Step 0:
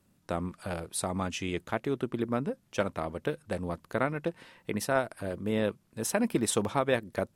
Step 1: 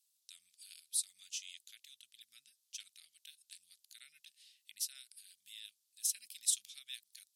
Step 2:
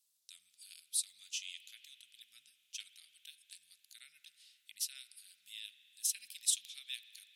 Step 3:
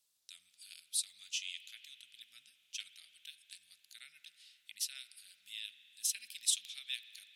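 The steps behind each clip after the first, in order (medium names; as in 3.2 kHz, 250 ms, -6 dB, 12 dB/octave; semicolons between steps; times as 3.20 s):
inverse Chebyshev high-pass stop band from 1.1 kHz, stop band 60 dB
dynamic bell 2.7 kHz, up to +6 dB, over -58 dBFS, Q 1.5; spring tank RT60 3.2 s, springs 41 ms, chirp 55 ms, DRR 11 dB
treble shelf 5 kHz -8 dB; trim +5.5 dB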